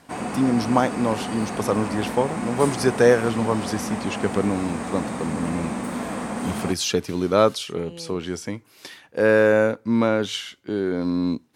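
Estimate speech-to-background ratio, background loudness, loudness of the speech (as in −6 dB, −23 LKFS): 6.5 dB, −29.5 LKFS, −23.0 LKFS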